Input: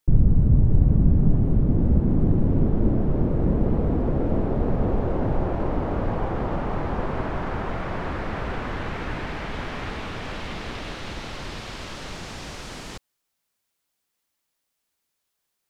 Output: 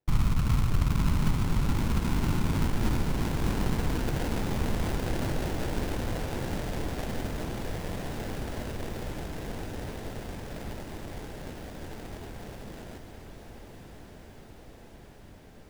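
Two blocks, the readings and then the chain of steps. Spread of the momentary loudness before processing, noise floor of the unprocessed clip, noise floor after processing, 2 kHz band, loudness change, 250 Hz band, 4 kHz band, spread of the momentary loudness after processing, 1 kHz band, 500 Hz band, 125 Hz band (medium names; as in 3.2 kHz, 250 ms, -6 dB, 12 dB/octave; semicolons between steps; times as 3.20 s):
16 LU, -79 dBFS, -49 dBFS, -4.0 dB, -7.0 dB, -7.5 dB, -1.5 dB, 20 LU, -6.0 dB, -7.5 dB, -7.0 dB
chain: sample-rate reducer 1.2 kHz, jitter 20%; on a send: echo that smears into a reverb 1152 ms, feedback 72%, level -9 dB; on the sum: trim -8 dB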